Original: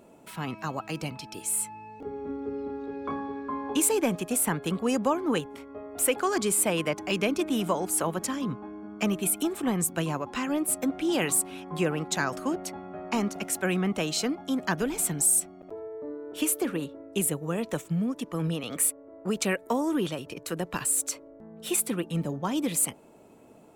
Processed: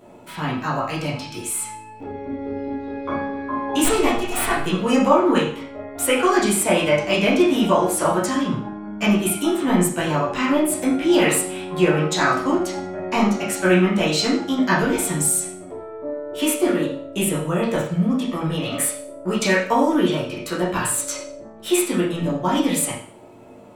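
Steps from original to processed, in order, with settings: 3.84–4.66 minimum comb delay 2.7 ms; reverb RT60 0.50 s, pre-delay 9 ms, DRR -8.5 dB; gain +1.5 dB

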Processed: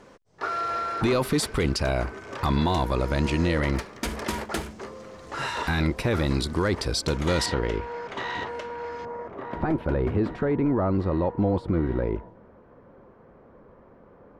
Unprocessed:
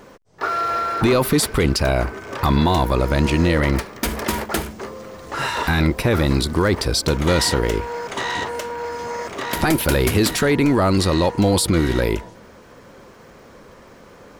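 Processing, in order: LPF 9400 Hz 12 dB/oct, from 7.46 s 3600 Hz, from 9.05 s 1100 Hz; gain -6.5 dB

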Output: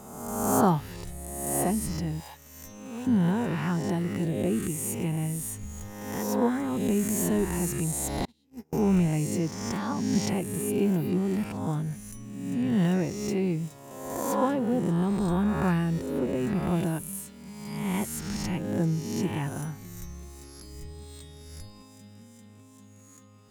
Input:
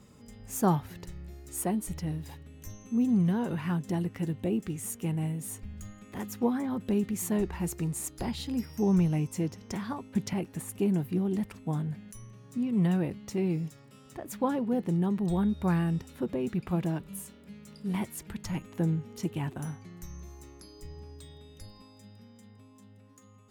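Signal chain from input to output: spectral swells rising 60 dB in 1.28 s; 2.2–3.07 resonant low shelf 440 Hz -11.5 dB, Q 1.5; 8.25–8.73 gate -25 dBFS, range -38 dB; gain +1 dB

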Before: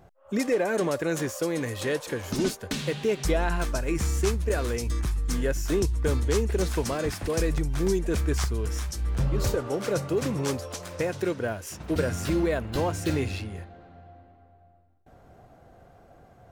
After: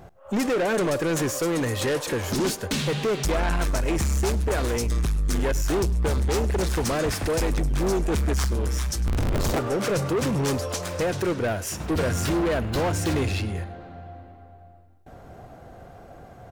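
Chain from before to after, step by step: 9.06–9.59 cycle switcher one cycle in 3, inverted; soft clip -29 dBFS, distortion -9 dB; echo 0.102 s -20 dB; gain +8.5 dB

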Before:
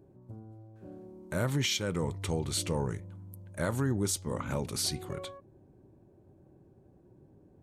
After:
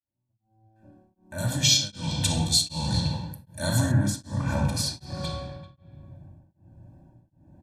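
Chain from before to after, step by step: opening faded in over 2.50 s; reverb RT60 1.6 s, pre-delay 3 ms, DRR -2 dB; dynamic EQ 4600 Hz, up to +4 dB, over -47 dBFS, Q 1.8; comb 1.2 ms, depth 97%; speakerphone echo 0.39 s, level -12 dB; spectral noise reduction 8 dB; 1.38–3.92 resonant high shelf 2900 Hz +10 dB, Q 1.5; beating tremolo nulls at 1.3 Hz

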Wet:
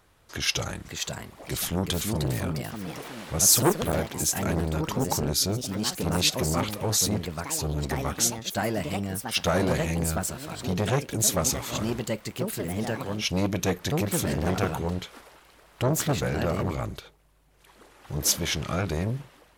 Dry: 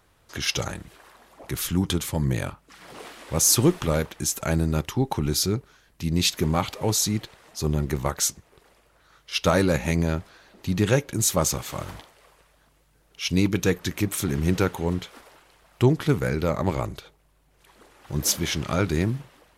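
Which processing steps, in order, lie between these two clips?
echoes that change speed 0.609 s, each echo +3 st, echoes 3, each echo -6 dB; core saturation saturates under 980 Hz

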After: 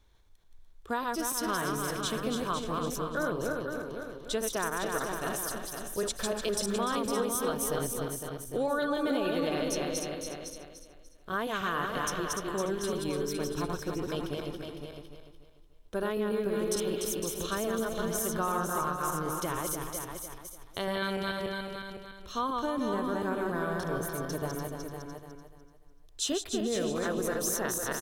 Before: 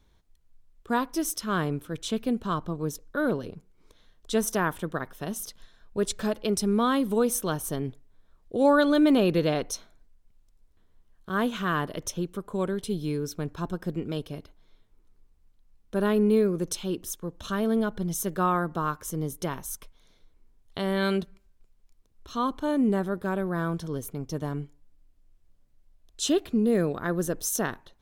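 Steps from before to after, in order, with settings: regenerating reverse delay 0.147 s, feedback 58%, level -3 dB; bell 190 Hz -8.5 dB 1.4 oct; compressor 4:1, threshold -28 dBFS, peak gain reduction 9.5 dB; on a send: echo 0.507 s -7 dB

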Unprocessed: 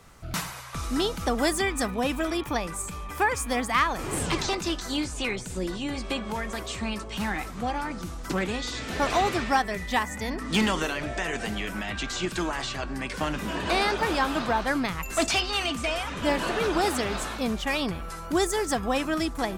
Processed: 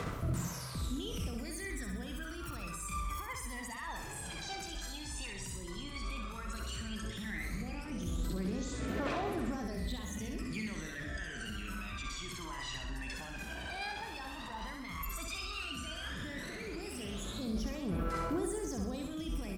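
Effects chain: HPF 73 Hz 6 dB/oct; bell 830 Hz -6 dB 0.44 oct; reverse; upward compressor, threshold -33 dBFS; reverse; limiter -38.5 dBFS, peak gain reduction 26.5 dB; phaser 0.11 Hz, delay 1.3 ms, feedback 75%; on a send: feedback echo 64 ms, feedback 53%, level -5 dB

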